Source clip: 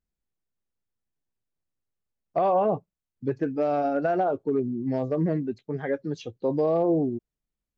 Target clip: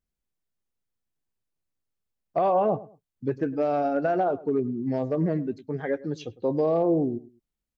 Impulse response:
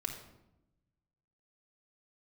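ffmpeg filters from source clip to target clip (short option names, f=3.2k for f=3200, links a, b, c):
-filter_complex "[0:a]asplit=2[a][b];[b]adelay=104,lowpass=f=1.5k:p=1,volume=-18dB,asplit=2[c][d];[d]adelay=104,lowpass=f=1.5k:p=1,volume=0.28[e];[a][c][e]amix=inputs=3:normalize=0"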